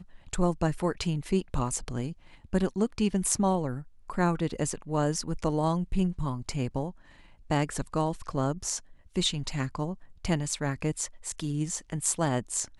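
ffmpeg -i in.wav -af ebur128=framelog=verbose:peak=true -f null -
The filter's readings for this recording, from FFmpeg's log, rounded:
Integrated loudness:
  I:         -30.1 LUFS
  Threshold: -40.3 LUFS
Loudness range:
  LRA:         2.8 LU
  Threshold: -50.3 LUFS
  LRA low:   -31.6 LUFS
  LRA high:  -28.8 LUFS
True peak:
  Peak:       -7.5 dBFS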